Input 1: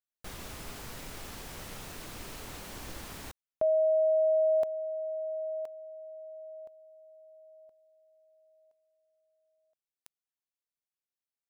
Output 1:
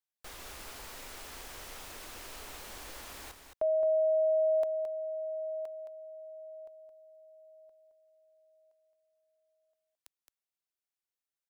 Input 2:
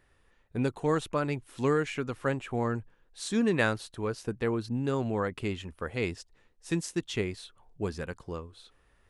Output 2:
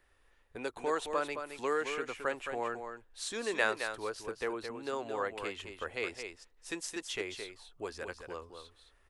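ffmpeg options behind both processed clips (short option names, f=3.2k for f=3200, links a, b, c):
-filter_complex "[0:a]acrossover=split=340|2800[a][b][c];[a]acompressor=threshold=-47dB:ratio=6:release=156:detection=peak[d];[d][b][c]amix=inputs=3:normalize=0,equalizer=f=150:t=o:w=1.5:g=-12,aecho=1:1:218:0.422,volume=-1.5dB"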